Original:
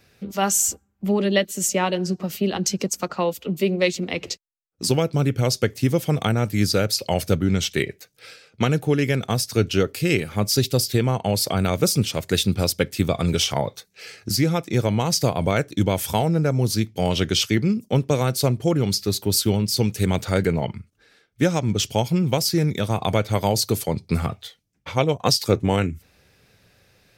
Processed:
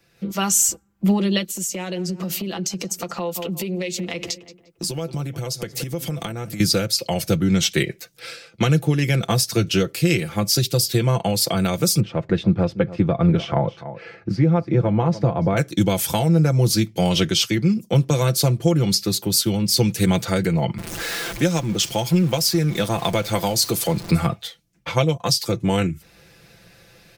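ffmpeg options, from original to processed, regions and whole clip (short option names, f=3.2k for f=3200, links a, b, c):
-filter_complex "[0:a]asettb=1/sr,asplit=3[a][b][c];[a]atrim=end=1.504[d];[b]atrim=start=1.5:end=6.6,asetpts=PTS-STARTPTS,afade=t=in:d=0.004:c=qsin,afade=t=out:st=5.096:d=0.004:c=qsin,asplit=2[e][f];[f]adelay=174,lowpass=f=2.2k:p=1,volume=-20dB,asplit=2[g][h];[h]adelay=174,lowpass=f=2.2k:p=1,volume=0.4,asplit=2[i][j];[j]adelay=174,lowpass=f=2.2k:p=1,volume=0.4[k];[e][g][i][k]amix=inputs=4:normalize=0,atrim=end_sample=224910,acompressor=threshold=-32dB:ratio=10:attack=3.2:release=140:knee=1:detection=peak,highshelf=f=4.8k:g=5[l];[c]atrim=start=6.596[m];[d][l]acrossfade=d=0.004:c1=hsin:c2=qsin[n];[n][m]acrossfade=d=0.004:c1=qsin:c2=hsin,asettb=1/sr,asplit=3[o][p][q];[o]atrim=end=12.004[r];[p]atrim=start=12:end=15.57,asetpts=PTS-STARTPTS,afade=t=in:d=0.004:c=qsin,afade=t=out:st=3.566:d=0.004:c=qsin,lowpass=1.4k,aecho=1:1:290:0.141,atrim=end_sample=157437[s];[q]atrim=start=15.566[t];[r][s]acrossfade=d=0.004:c1=hsin:c2=qsin[u];[u][t]acrossfade=d=0.004:c1=qsin:c2=hsin,asettb=1/sr,asplit=3[v][w][x];[v]atrim=end=20.784[y];[w]atrim=start=20.78:end=24.11,asetpts=PTS-STARTPTS,afade=t=in:d=0.004:c=qsin,afade=t=out:st=3.326:d=0.004:c=qsin,aeval=exprs='val(0)+0.5*0.0224*sgn(val(0))':c=same,equalizer=f=78:w=0.5:g=-5.5,acompressor=mode=upward:threshold=-31dB:ratio=2.5:attack=3.2:release=140:knee=2.83:detection=peak[z];[x]atrim=start=24.106[aa];[y][z]acrossfade=d=0.004:c1=hsin:c2=qsin[ab];[ab][aa]acrossfade=d=0.004:c1=qsin:c2=hsin,acrossover=split=150|3000[ac][ad][ae];[ad]acompressor=threshold=-22dB:ratio=6[af];[ac][af][ae]amix=inputs=3:normalize=0,aecho=1:1:5.9:0.59,dynaudnorm=f=140:g=3:m=11.5dB,volume=-5dB"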